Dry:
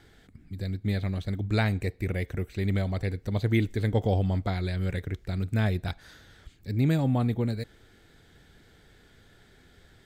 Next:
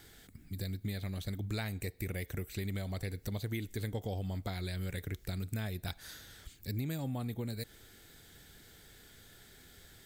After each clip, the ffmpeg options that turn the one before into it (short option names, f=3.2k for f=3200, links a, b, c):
-af "aemphasis=mode=production:type=75fm,acompressor=threshold=-32dB:ratio=6,volume=-2dB"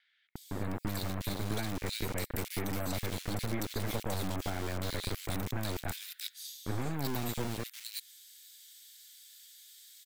-filter_complex "[0:a]acrossover=split=2500[a][b];[a]acrusher=bits=4:dc=4:mix=0:aa=0.000001[c];[c][b]amix=inputs=2:normalize=0,acrossover=split=2300[d][e];[e]adelay=360[f];[d][f]amix=inputs=2:normalize=0,volume=6.5dB"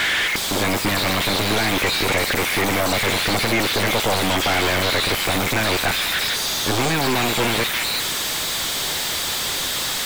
-filter_complex "[0:a]aeval=exprs='val(0)+0.5*0.0126*sgn(val(0))':c=same,asplit=2[a][b];[b]highpass=f=720:p=1,volume=31dB,asoftclip=type=tanh:threshold=-18.5dB[c];[a][c]amix=inputs=2:normalize=0,lowpass=f=2.4k:p=1,volume=-6dB,volume=8.5dB"